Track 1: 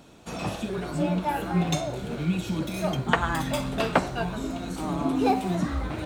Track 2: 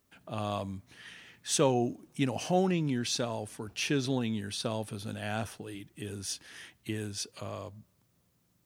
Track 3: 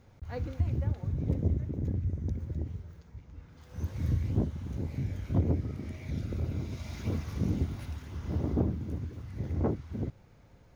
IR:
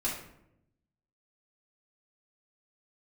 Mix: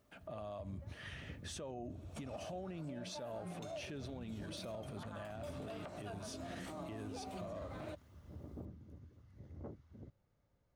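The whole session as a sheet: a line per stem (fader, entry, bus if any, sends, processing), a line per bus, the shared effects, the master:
-9.5 dB, 1.90 s, bus A, no send, compression, threshold -25 dBFS, peak gain reduction 9.5 dB; high-pass 93 Hz
+1.0 dB, 0.00 s, bus A, no send, treble shelf 3.6 kHz -8.5 dB
-20.0 dB, 0.00 s, no bus, no send, band-stop 2.4 kHz
bus A: 0.0 dB, peaking EQ 640 Hz +8 dB 0.26 oct; compression 4:1, threshold -41 dBFS, peak gain reduction 18.5 dB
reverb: none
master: small resonant body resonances 580/1200 Hz, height 6 dB; peak limiter -37 dBFS, peak gain reduction 11 dB

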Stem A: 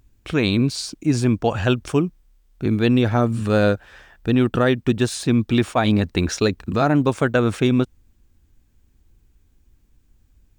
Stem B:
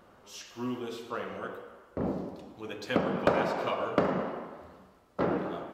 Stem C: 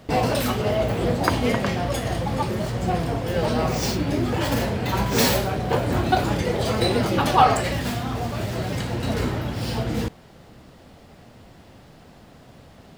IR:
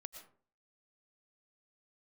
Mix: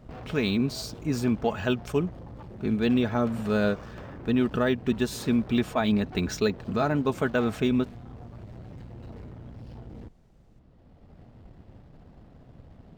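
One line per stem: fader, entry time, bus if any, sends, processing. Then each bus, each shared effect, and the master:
-7.5 dB, 0.00 s, no bus, no send, comb 4.7 ms, depth 45%
-4.5 dB, 0.00 s, bus A, no send, octave divider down 1 oct, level +3 dB
-6.0 dB, 0.00 s, bus A, no send, tilt EQ -3 dB/octave; auto duck -9 dB, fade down 0.40 s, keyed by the first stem
bus A: 0.0 dB, valve stage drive 33 dB, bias 0.75; compression, threshold -39 dBFS, peak gain reduction 6.5 dB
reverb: none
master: decimation joined by straight lines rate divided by 2×

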